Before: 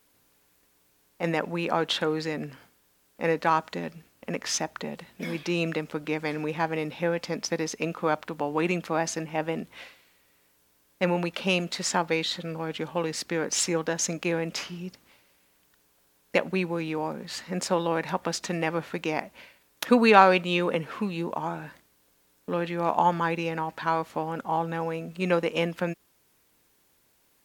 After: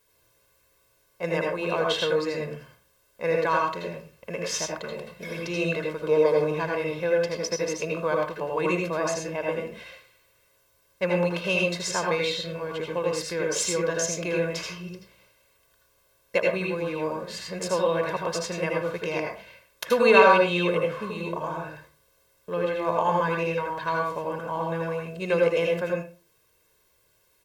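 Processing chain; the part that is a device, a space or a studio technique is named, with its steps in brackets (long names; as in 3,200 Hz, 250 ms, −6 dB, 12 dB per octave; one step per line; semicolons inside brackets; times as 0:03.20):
0:05.99–0:06.44: octave-band graphic EQ 500/1,000/2,000 Hz +10/+8/−8 dB
microphone above a desk (comb filter 1.9 ms, depth 74%; convolution reverb RT60 0.35 s, pre-delay 75 ms, DRR −0.5 dB)
level −4 dB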